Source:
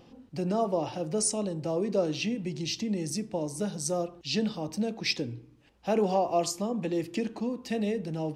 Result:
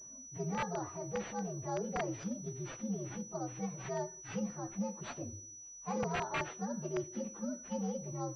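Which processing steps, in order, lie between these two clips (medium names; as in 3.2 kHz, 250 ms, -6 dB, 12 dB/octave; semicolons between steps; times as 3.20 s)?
frequency axis rescaled in octaves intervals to 125%; integer overflow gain 21 dB; class-D stage that switches slowly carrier 5.9 kHz; trim -6 dB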